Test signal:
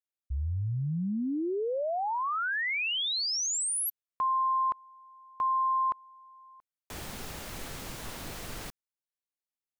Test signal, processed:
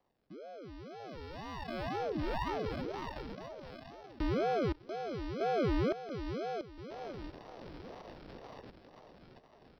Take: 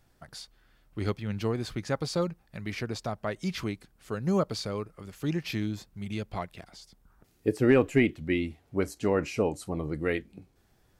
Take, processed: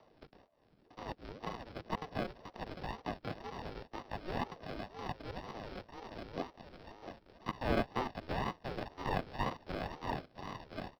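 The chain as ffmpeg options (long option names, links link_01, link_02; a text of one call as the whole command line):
ffmpeg -i in.wav -filter_complex "[0:a]acrossover=split=570 2000:gain=0.2 1 0.1[link_01][link_02][link_03];[link_01][link_02][link_03]amix=inputs=3:normalize=0,asplit=2[link_04][link_05];[link_05]adelay=688,lowpass=frequency=1900:poles=1,volume=-5.5dB,asplit=2[link_06][link_07];[link_07]adelay=688,lowpass=frequency=1900:poles=1,volume=0.52,asplit=2[link_08][link_09];[link_09]adelay=688,lowpass=frequency=1900:poles=1,volume=0.52,asplit=2[link_10][link_11];[link_11]adelay=688,lowpass=frequency=1900:poles=1,volume=0.52,asplit=2[link_12][link_13];[link_13]adelay=688,lowpass=frequency=1900:poles=1,volume=0.52,asplit=2[link_14][link_15];[link_15]adelay=688,lowpass=frequency=1900:poles=1,volume=0.52,asplit=2[link_16][link_17];[link_17]adelay=688,lowpass=frequency=1900:poles=1,volume=0.52[link_18];[link_04][link_06][link_08][link_10][link_12][link_14][link_16][link_18]amix=inputs=8:normalize=0,acompressor=mode=upward:threshold=-48dB:ratio=2.5:attack=4.9:release=927:knee=2.83:detection=peak,aresample=11025,acrusher=samples=12:mix=1:aa=0.000001,aresample=44100,acrossover=split=3100[link_19][link_20];[link_20]acompressor=threshold=-49dB:ratio=4:attack=1:release=60[link_21];[link_19][link_21]amix=inputs=2:normalize=0,acrossover=split=420|810[link_22][link_23][link_24];[link_23]acrusher=bits=6:mode=log:mix=0:aa=0.000001[link_25];[link_22][link_25][link_24]amix=inputs=3:normalize=0,aeval=exprs='val(0)*sin(2*PI*400*n/s+400*0.6/2*sin(2*PI*2*n/s))':channel_layout=same" out.wav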